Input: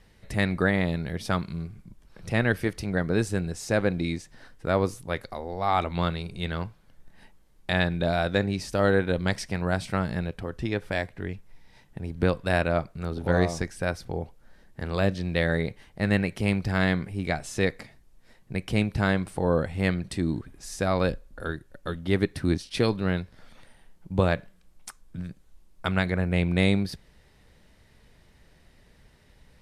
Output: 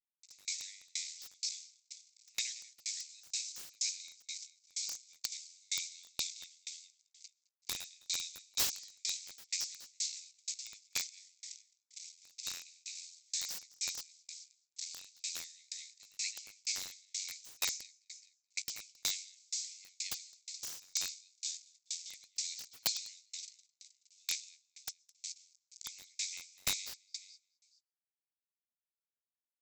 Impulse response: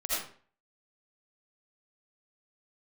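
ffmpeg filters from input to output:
-filter_complex "[0:a]aresample=16000,acrusher=bits=6:mix=0:aa=0.000001,aresample=44100,acontrast=90,aemphasis=mode=reproduction:type=75kf,aecho=1:1:213|426|639|852:0.355|0.135|0.0512|0.0195,aexciter=amount=10.3:drive=8.3:freq=4500,asuperpass=centerf=4400:order=20:qfactor=0.72,asplit=2[link_01][link_02];[link_02]adelay=17,volume=-13dB[link_03];[link_01][link_03]amix=inputs=2:normalize=0,asplit=2[link_04][link_05];[1:a]atrim=start_sample=2205,adelay=50[link_06];[link_05][link_06]afir=irnorm=-1:irlink=0,volume=-27.5dB[link_07];[link_04][link_07]amix=inputs=2:normalize=0,aeval=exprs='(mod(5.96*val(0)+1,2)-1)/5.96':channel_layout=same,aeval=exprs='val(0)*pow(10,-37*if(lt(mod(2.1*n/s,1),2*abs(2.1)/1000),1-mod(2.1*n/s,1)/(2*abs(2.1)/1000),(mod(2.1*n/s,1)-2*abs(2.1)/1000)/(1-2*abs(2.1)/1000))/20)':channel_layout=same,volume=-4.5dB"

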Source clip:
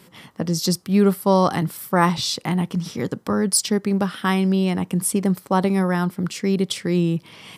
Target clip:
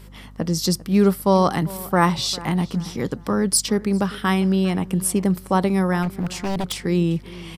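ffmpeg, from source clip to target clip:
ffmpeg -i in.wav -filter_complex "[0:a]asplit=2[link_01][link_02];[link_02]adelay=399,lowpass=frequency=3300:poles=1,volume=-19dB,asplit=2[link_03][link_04];[link_04]adelay=399,lowpass=frequency=3300:poles=1,volume=0.34,asplit=2[link_05][link_06];[link_06]adelay=399,lowpass=frequency=3300:poles=1,volume=0.34[link_07];[link_01][link_03][link_05][link_07]amix=inputs=4:normalize=0,asplit=3[link_08][link_09][link_10];[link_08]afade=type=out:start_time=6.02:duration=0.02[link_11];[link_09]aeval=exprs='0.119*(abs(mod(val(0)/0.119+3,4)-2)-1)':channel_layout=same,afade=type=in:start_time=6.02:duration=0.02,afade=type=out:start_time=6.79:duration=0.02[link_12];[link_10]afade=type=in:start_time=6.79:duration=0.02[link_13];[link_11][link_12][link_13]amix=inputs=3:normalize=0,aeval=exprs='val(0)+0.00794*(sin(2*PI*50*n/s)+sin(2*PI*2*50*n/s)/2+sin(2*PI*3*50*n/s)/3+sin(2*PI*4*50*n/s)/4+sin(2*PI*5*50*n/s)/5)':channel_layout=same" out.wav

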